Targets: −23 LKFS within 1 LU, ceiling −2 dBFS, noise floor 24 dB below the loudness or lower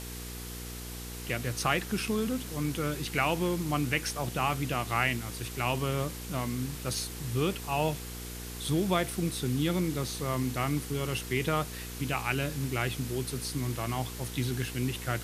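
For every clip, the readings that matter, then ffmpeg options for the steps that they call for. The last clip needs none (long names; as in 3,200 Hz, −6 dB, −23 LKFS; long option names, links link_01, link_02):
mains hum 60 Hz; hum harmonics up to 480 Hz; level of the hum −40 dBFS; background noise floor −41 dBFS; target noise floor −56 dBFS; integrated loudness −31.5 LKFS; sample peak −11.5 dBFS; target loudness −23.0 LKFS
→ -af "bandreject=frequency=60:width_type=h:width=4,bandreject=frequency=120:width_type=h:width=4,bandreject=frequency=180:width_type=h:width=4,bandreject=frequency=240:width_type=h:width=4,bandreject=frequency=300:width_type=h:width=4,bandreject=frequency=360:width_type=h:width=4,bandreject=frequency=420:width_type=h:width=4,bandreject=frequency=480:width_type=h:width=4"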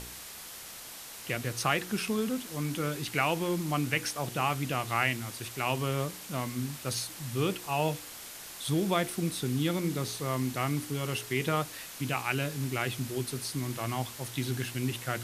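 mains hum none found; background noise floor −45 dBFS; target noise floor −56 dBFS
→ -af "afftdn=noise_reduction=11:noise_floor=-45"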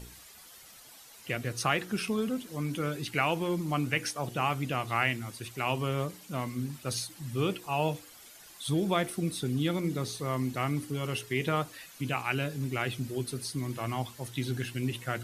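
background noise floor −52 dBFS; target noise floor −56 dBFS
→ -af "afftdn=noise_reduction=6:noise_floor=-52"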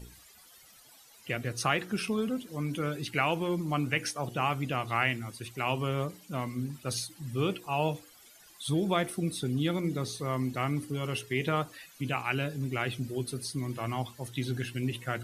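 background noise floor −57 dBFS; integrated loudness −32.0 LKFS; sample peak −12.0 dBFS; target loudness −23.0 LKFS
→ -af "volume=9dB"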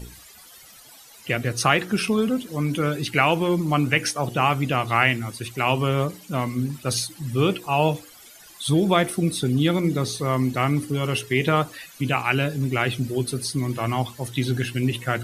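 integrated loudness −23.0 LKFS; sample peak −3.0 dBFS; background noise floor −48 dBFS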